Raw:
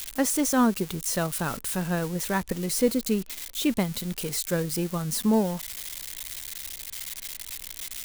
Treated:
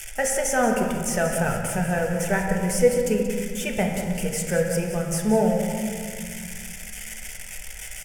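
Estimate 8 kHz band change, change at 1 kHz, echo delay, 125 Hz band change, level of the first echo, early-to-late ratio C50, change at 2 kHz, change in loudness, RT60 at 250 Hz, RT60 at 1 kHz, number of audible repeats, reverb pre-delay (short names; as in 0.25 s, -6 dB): +2.0 dB, +4.5 dB, 0.181 s, +4.0 dB, -11.0 dB, 3.5 dB, +7.0 dB, +3.5 dB, 3.0 s, 2.0 s, 1, 3 ms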